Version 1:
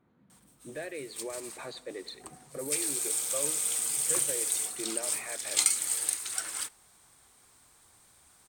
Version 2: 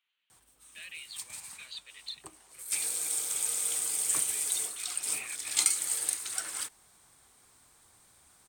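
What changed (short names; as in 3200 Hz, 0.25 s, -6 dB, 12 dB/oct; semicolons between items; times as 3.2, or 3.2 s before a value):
speech: add resonant high-pass 2900 Hz, resonance Q 5.9; reverb: off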